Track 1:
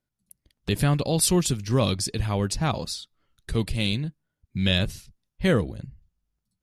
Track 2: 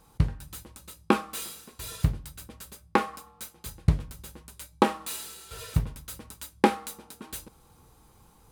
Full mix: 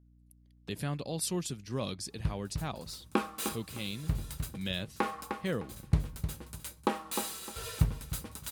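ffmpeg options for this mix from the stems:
-filter_complex "[0:a]highpass=120,aeval=exprs='val(0)+0.00398*(sin(2*PI*60*n/s)+sin(2*PI*2*60*n/s)/2+sin(2*PI*3*60*n/s)/3+sin(2*PI*4*60*n/s)/4+sin(2*PI*5*60*n/s)/5)':c=same,volume=-12dB,asplit=2[a][b];[1:a]adelay=2050,volume=0.5dB,asplit=2[c][d];[d]volume=-14.5dB[e];[b]apad=whole_len=465988[f];[c][f]sidechaincompress=threshold=-49dB:ratio=8:attack=9.3:release=215[g];[e]aecho=0:1:305|610|915|1220:1|0.23|0.0529|0.0122[h];[a][g][h]amix=inputs=3:normalize=0,alimiter=limit=-12dB:level=0:latency=1:release=388"

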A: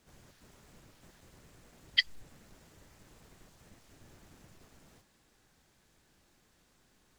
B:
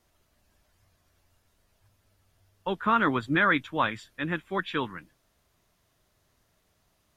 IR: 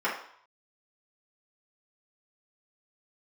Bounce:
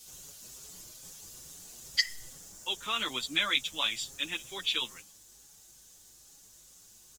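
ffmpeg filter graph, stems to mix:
-filter_complex "[0:a]highshelf=f=4.6k:t=q:w=3:g=13,aeval=exprs='val(0)+0.000251*(sin(2*PI*50*n/s)+sin(2*PI*2*50*n/s)/2+sin(2*PI*3*50*n/s)/3+sin(2*PI*4*50*n/s)/4+sin(2*PI*5*50*n/s)/5)':c=same,volume=2dB,asplit=2[a][b];[b]volume=-15.5dB[c];[1:a]equalizer=f=88:t=o:w=2.7:g=-13,aexciter=amount=14.7:drive=4.8:freq=2.5k,afade=t=out:st=2.23:d=0.39:silence=0.375837[d];[2:a]atrim=start_sample=2205[e];[c][e]afir=irnorm=-1:irlink=0[f];[a][d][f]amix=inputs=3:normalize=0,asplit=2[g][h];[h]adelay=6.3,afreqshift=2.3[i];[g][i]amix=inputs=2:normalize=1"

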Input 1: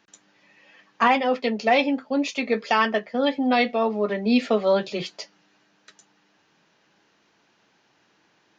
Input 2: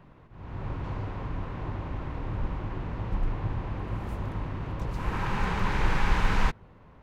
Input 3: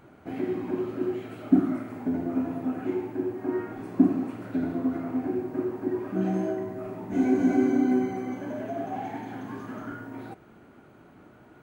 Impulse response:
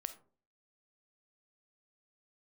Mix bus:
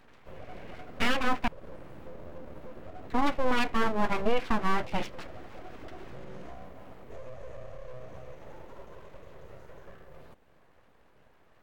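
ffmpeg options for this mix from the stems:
-filter_complex "[0:a]lowpass=f=2.4k:w=0.5412,lowpass=f=2.4k:w=1.3066,volume=2.5dB,asplit=3[a][b][c];[a]atrim=end=1.48,asetpts=PTS-STARTPTS,afade=t=out:st=1.476:d=0.004:c=hsin[d];[b]atrim=start=1.48:end=3.1,asetpts=PTS-STARTPTS,volume=0[e];[c]atrim=start=3.1,asetpts=PTS-STARTPTS,afade=t=in:d=0.004:c=hsin[f];[d][e][f]concat=n=3:v=0:a=1[g];[1:a]acompressor=threshold=-41dB:ratio=3,volume=-6dB[h];[2:a]acrossover=split=460|1800[i][j][k];[i]acompressor=threshold=-25dB:ratio=4[l];[j]acompressor=threshold=-54dB:ratio=4[m];[k]acompressor=threshold=-56dB:ratio=4[n];[l][m][n]amix=inputs=3:normalize=0,volume=-7dB[o];[h][o]amix=inputs=2:normalize=0,alimiter=level_in=9dB:limit=-24dB:level=0:latency=1:release=106,volume=-9dB,volume=0dB[p];[g][p]amix=inputs=2:normalize=0,aeval=exprs='abs(val(0))':c=same,alimiter=limit=-14.5dB:level=0:latency=1:release=256"

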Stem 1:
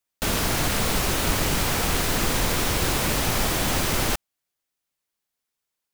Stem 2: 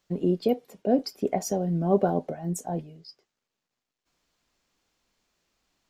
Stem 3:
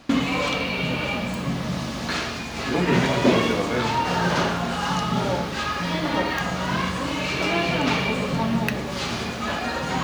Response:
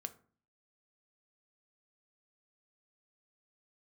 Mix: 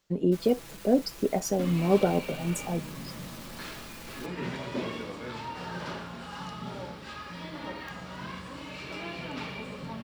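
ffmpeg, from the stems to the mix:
-filter_complex "[0:a]volume=29dB,asoftclip=hard,volume=-29dB,aecho=1:1:6:0.66,adelay=100,volume=-17.5dB[a];[1:a]volume=0dB[b];[2:a]bandreject=f=6.4k:w=8.8,adelay=1500,volume=-15dB[c];[a][b][c]amix=inputs=3:normalize=0,bandreject=f=710:w=12"

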